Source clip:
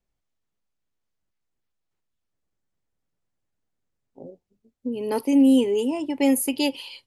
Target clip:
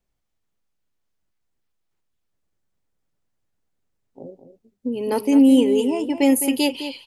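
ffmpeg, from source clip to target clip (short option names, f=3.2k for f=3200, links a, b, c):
-filter_complex "[0:a]asplit=2[a][b];[b]adelay=209.9,volume=-10dB,highshelf=f=4k:g=-4.72[c];[a][c]amix=inputs=2:normalize=0,volume=3dB"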